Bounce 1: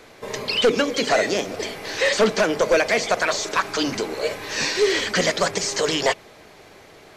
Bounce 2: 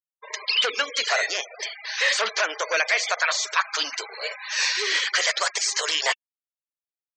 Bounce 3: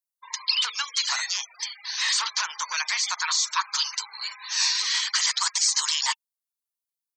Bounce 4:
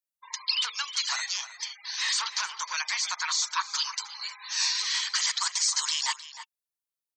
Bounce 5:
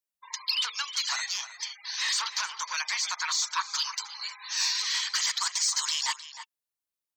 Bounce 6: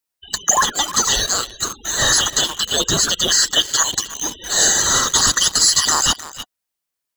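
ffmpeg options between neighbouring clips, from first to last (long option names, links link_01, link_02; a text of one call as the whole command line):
ffmpeg -i in.wav -af "highpass=1100,afftfilt=real='re*gte(hypot(re,im),0.0251)':imag='im*gte(hypot(re,im),0.0251)':win_size=1024:overlap=0.75,volume=1.5dB" out.wav
ffmpeg -i in.wav -af "firequalizer=gain_entry='entry(140,0);entry(220,-27);entry(600,-26);entry(910,7);entry(1500,-2);entry(2500,-1);entry(4100,8);entry(7200,9);entry(10000,13)':delay=0.05:min_phase=1,volume=-5.5dB" out.wav
ffmpeg -i in.wav -filter_complex "[0:a]asplit=2[link_01][link_02];[link_02]adelay=309,volume=-12dB,highshelf=frequency=4000:gain=-6.95[link_03];[link_01][link_03]amix=inputs=2:normalize=0,volume=-3.5dB" out.wav
ffmpeg -i in.wav -af "asoftclip=type=tanh:threshold=-16dB" out.wav
ffmpeg -i in.wav -filter_complex "[0:a]afftfilt=real='real(if(lt(b,920),b+92*(1-2*mod(floor(b/92),2)),b),0)':imag='imag(if(lt(b,920),b+92*(1-2*mod(floor(b/92),2)),b),0)':win_size=2048:overlap=0.75,asplit=2[link_01][link_02];[link_02]acrusher=bits=5:mix=0:aa=0.000001,volume=-3.5dB[link_03];[link_01][link_03]amix=inputs=2:normalize=0,volume=8.5dB" out.wav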